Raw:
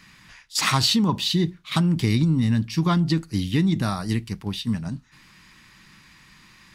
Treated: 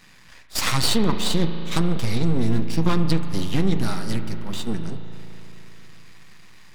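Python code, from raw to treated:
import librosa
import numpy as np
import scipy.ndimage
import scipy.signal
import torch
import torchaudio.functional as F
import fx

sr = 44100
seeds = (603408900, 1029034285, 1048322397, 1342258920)

y = np.maximum(x, 0.0)
y = fx.rev_spring(y, sr, rt60_s=3.5, pass_ms=(36,), chirp_ms=50, drr_db=8.0)
y = y * librosa.db_to_amplitude(3.0)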